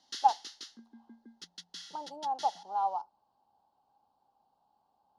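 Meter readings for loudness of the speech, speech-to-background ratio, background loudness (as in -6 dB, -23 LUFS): -32.5 LUFS, 14.0 dB, -46.5 LUFS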